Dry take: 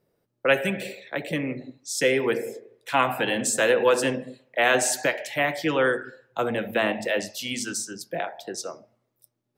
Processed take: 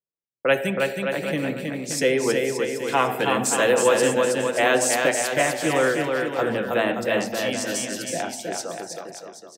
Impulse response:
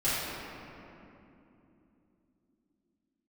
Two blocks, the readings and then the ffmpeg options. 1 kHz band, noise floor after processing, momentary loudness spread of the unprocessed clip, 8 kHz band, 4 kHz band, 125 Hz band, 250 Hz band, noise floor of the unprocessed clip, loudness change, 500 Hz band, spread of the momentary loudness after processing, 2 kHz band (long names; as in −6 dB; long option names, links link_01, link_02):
+3.0 dB, −49 dBFS, 13 LU, +3.5 dB, +2.0 dB, +3.5 dB, +3.5 dB, −77 dBFS, +2.5 dB, +3.5 dB, 11 LU, +1.0 dB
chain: -af "agate=range=-33dB:threshold=-47dB:ratio=3:detection=peak,equalizer=frequency=2200:width_type=o:width=1.5:gain=-3,aecho=1:1:320|576|780.8|944.6|1076:0.631|0.398|0.251|0.158|0.1,volume=1.5dB"